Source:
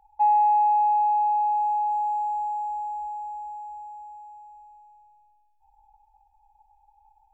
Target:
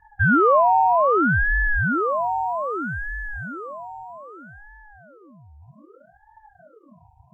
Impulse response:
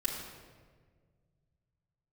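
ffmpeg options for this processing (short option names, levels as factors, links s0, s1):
-filter_complex "[0:a]asettb=1/sr,asplit=3[s0][s1][s2];[s0]atrim=end=2.434[s3];[s1]atrim=start=2.43:end=3.28,asetpts=PTS-STARTPTS,afade=t=in:d=0.004:c=qsin,afade=t=out:st=0.846:d=0.004:c=qsin,highpass=f=72:w=0.5412,highpass=f=72:w=1.3066[s4];[s2]atrim=start=3.276[s5];[s3][s4]acrossfade=d=0.004:c1=hsin:c2=qsin[s6];[s6][s5]acrossfade=d=0.004:c1=qsin:c2=hsin,asplit=2[s7][s8];[1:a]atrim=start_sample=2205,asetrate=26901,aresample=44100,lowshelf=f=500:g=12[s9];[s8][s9]afir=irnorm=-1:irlink=0,volume=0.251[s10];[s7][s10]amix=inputs=2:normalize=0,aeval=exprs='val(0)*sin(2*PI*480*n/s+480*0.85/0.63*sin(2*PI*0.63*n/s))':c=same"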